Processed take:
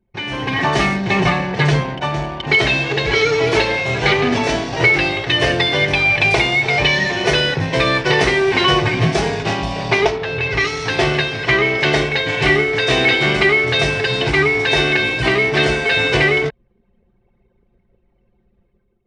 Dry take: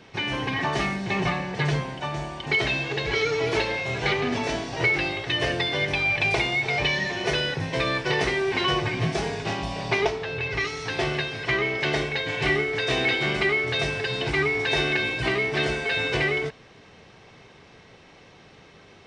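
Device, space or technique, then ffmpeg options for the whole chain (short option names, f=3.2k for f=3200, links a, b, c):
voice memo with heavy noise removal: -af "anlmdn=1.58,dynaudnorm=f=140:g=7:m=8.5dB,volume=1.5dB"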